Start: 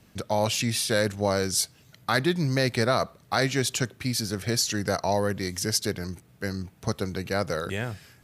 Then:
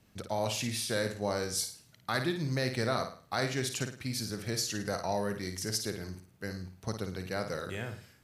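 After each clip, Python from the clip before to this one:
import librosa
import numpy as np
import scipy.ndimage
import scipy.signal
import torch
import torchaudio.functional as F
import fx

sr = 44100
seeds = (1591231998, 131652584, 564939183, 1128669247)

y = fx.room_flutter(x, sr, wall_m=9.3, rt60_s=0.42)
y = y * librosa.db_to_amplitude(-8.0)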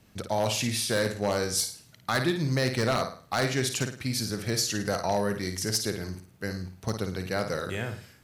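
y = 10.0 ** (-22.0 / 20.0) * (np.abs((x / 10.0 ** (-22.0 / 20.0) + 3.0) % 4.0 - 2.0) - 1.0)
y = y * librosa.db_to_amplitude(5.5)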